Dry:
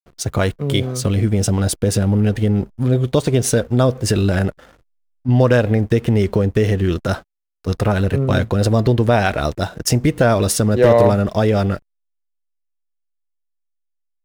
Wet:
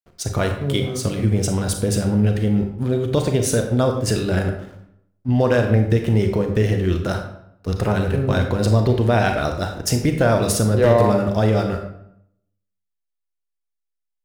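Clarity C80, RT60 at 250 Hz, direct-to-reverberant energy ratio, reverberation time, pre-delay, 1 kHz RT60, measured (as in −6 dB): 9.5 dB, 0.80 s, 4.5 dB, 0.70 s, 29 ms, 0.70 s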